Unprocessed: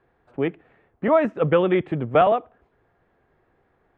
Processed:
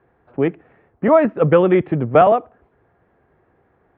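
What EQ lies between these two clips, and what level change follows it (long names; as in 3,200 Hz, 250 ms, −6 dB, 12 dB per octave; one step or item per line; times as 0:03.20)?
high-pass filter 49 Hz
high-frequency loss of the air 400 metres
+6.5 dB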